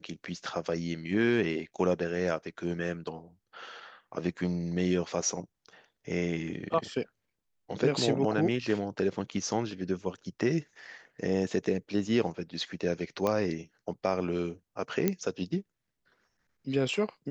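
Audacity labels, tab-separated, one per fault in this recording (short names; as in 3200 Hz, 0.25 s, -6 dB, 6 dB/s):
13.270000	13.270000	pop -16 dBFS
15.080000	15.080000	pop -12 dBFS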